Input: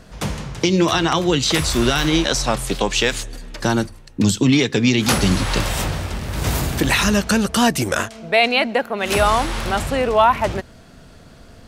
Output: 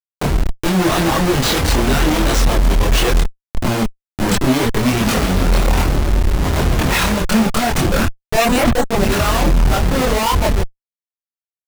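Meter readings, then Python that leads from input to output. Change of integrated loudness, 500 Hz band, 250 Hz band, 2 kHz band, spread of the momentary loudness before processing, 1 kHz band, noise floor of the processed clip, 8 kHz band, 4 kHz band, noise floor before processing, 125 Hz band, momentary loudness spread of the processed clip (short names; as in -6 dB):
+2.0 dB, +1.0 dB, +2.0 dB, 0.0 dB, 9 LU, +1.0 dB, under -85 dBFS, +0.5 dB, -0.5 dB, -44 dBFS, +5.0 dB, 5 LU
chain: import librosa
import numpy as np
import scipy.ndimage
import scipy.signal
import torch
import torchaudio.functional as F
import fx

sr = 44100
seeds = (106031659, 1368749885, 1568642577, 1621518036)

y = fx.schmitt(x, sr, flips_db=-21.0)
y = fx.chorus_voices(y, sr, voices=6, hz=0.96, base_ms=25, depth_ms=3.0, mix_pct=50)
y = F.gain(torch.from_numpy(y), 6.5).numpy()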